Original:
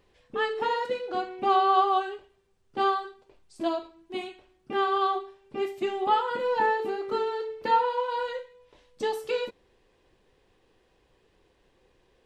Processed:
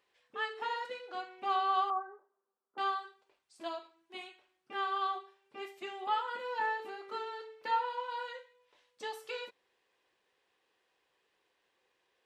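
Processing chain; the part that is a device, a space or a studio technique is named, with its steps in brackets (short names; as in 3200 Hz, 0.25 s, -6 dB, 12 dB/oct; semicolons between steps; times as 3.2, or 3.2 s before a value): 1.9–2.78 elliptic band-pass 210–1300 Hz, stop band 40 dB; filter by subtraction (in parallel: LPF 1500 Hz 12 dB/oct + phase invert); on the sum: gain -7.5 dB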